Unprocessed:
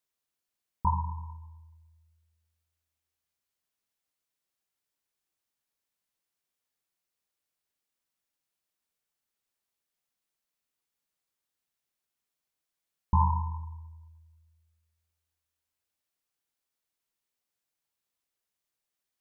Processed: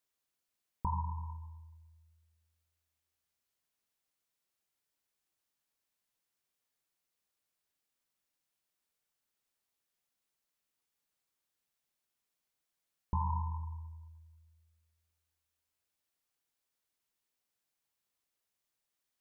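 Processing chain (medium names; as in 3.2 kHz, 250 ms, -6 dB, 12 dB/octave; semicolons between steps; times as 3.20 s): peak limiter -20.5 dBFS, peak gain reduction 7 dB; compression 1.5:1, threshold -38 dBFS, peak gain reduction 5 dB; endings held to a fixed fall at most 240 dB/s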